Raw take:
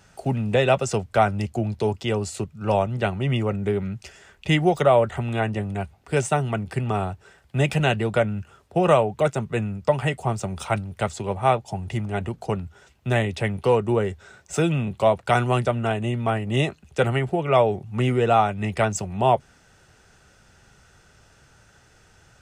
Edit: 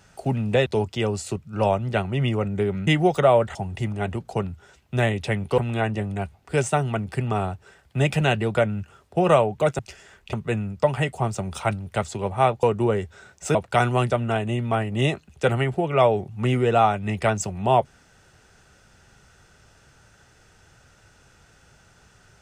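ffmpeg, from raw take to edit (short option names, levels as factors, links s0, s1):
-filter_complex "[0:a]asplit=9[s0][s1][s2][s3][s4][s5][s6][s7][s8];[s0]atrim=end=0.662[s9];[s1]atrim=start=1.738:end=3.952[s10];[s2]atrim=start=4.488:end=5.172[s11];[s3]atrim=start=11.678:end=13.712[s12];[s4]atrim=start=5.168:end=9.382[s13];[s5]atrim=start=3.948:end=4.492[s14];[s6]atrim=start=9.378:end=11.682[s15];[s7]atrim=start=13.708:end=14.632[s16];[s8]atrim=start=15.098[s17];[s9][s10]acrossfade=d=0.004:c1=hsin:c2=hsin[s18];[s18][s11]acrossfade=d=0.004:c1=hsin:c2=hsin[s19];[s19][s12]acrossfade=d=0.004:c1=hsin:c2=hsin[s20];[s20][s13]acrossfade=d=0.004:c1=hsin:c2=hsin[s21];[s21][s14]acrossfade=d=0.004:c1=hsin:c2=hsin[s22];[s22][s15]acrossfade=d=0.004:c1=hsin:c2=hsin[s23];[s23][s16]acrossfade=d=0.004:c1=hsin:c2=hsin[s24];[s24][s17]acrossfade=d=0.004:c1=hsin:c2=hsin"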